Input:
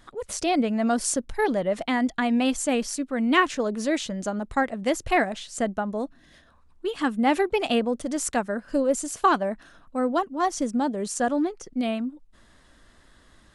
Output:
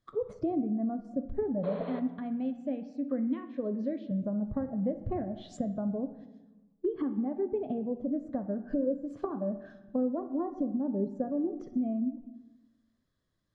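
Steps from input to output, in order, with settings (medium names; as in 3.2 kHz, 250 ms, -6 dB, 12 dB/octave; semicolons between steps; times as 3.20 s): 1.84–4.11 s: frequency weighting D; gate -49 dBFS, range -19 dB; peaking EQ 130 Hz +11 dB 1.1 oct; compression 10:1, threshold -28 dBFS, peak gain reduction 19 dB; tape echo 63 ms, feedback 64%, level -18.5 dB, low-pass 4.1 kHz; spectral noise reduction 9 dB; 1.63–2.00 s: painted sound noise 390–4400 Hz -30 dBFS; low-pass that closes with the level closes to 560 Hz, closed at -31 dBFS; reverberation RT60 1.1 s, pre-delay 3 ms, DRR 9 dB; trim -1.5 dB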